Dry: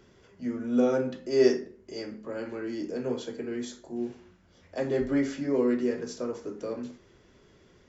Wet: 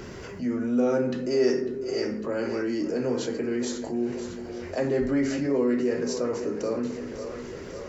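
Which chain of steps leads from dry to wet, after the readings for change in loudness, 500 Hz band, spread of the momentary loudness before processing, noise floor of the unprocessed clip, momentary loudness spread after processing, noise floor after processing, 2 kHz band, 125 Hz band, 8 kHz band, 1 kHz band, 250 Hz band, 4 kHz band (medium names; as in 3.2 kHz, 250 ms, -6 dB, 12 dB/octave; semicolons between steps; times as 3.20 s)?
+2.5 dB, +2.5 dB, 14 LU, -60 dBFS, 11 LU, -39 dBFS, +4.0 dB, +5.0 dB, no reading, +4.0 dB, +3.0 dB, +4.0 dB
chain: band-stop 3.4 kHz, Q 7.5; on a send: two-band feedback delay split 390 Hz, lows 198 ms, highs 549 ms, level -15 dB; on the sum: level flattener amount 50%; trim -2.5 dB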